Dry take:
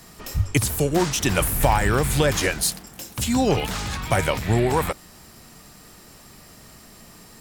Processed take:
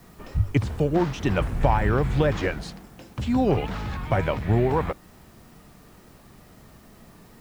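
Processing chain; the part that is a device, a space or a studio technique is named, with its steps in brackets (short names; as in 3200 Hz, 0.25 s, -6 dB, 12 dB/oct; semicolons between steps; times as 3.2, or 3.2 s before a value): cassette deck with a dirty head (tape spacing loss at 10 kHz 32 dB; wow and flutter; white noise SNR 35 dB)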